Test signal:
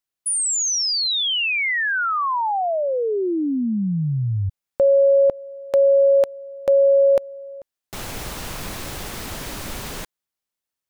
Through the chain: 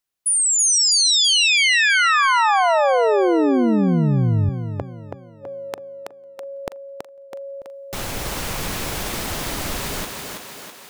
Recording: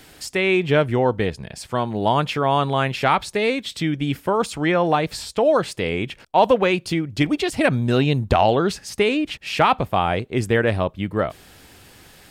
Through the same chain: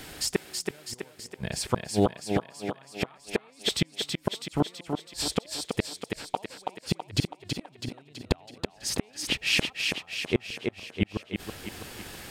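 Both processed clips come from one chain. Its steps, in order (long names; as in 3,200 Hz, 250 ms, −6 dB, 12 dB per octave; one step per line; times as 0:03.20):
gate with flip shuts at −14 dBFS, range −41 dB
feedback echo with a high-pass in the loop 327 ms, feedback 57%, high-pass 180 Hz, level −4 dB
level +3.5 dB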